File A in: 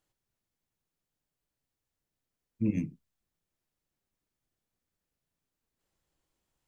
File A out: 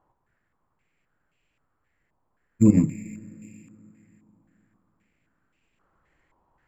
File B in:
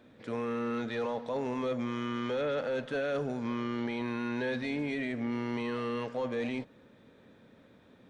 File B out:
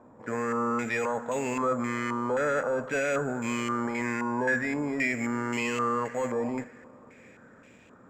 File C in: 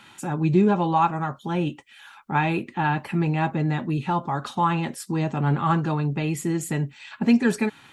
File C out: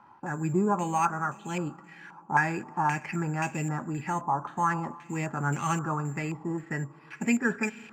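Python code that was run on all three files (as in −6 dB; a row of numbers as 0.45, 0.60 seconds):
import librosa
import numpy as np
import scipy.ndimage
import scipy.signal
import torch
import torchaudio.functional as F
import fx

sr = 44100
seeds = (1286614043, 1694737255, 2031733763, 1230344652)

y = fx.rev_schroeder(x, sr, rt60_s=3.6, comb_ms=29, drr_db=18.5)
y = (np.kron(scipy.signal.resample_poly(y, 1, 6), np.eye(6)[0]) * 6)[:len(y)]
y = fx.filter_held_lowpass(y, sr, hz=3.8, low_hz=980.0, high_hz=2600.0)
y = y * 10.0 ** (-30 / 20.0) / np.sqrt(np.mean(np.square(y)))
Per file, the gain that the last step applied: +12.5, +2.5, −8.0 decibels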